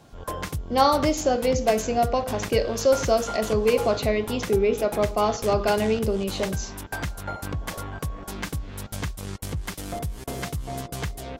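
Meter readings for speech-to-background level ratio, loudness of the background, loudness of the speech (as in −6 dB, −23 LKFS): 9.5 dB, −33.0 LKFS, −23.5 LKFS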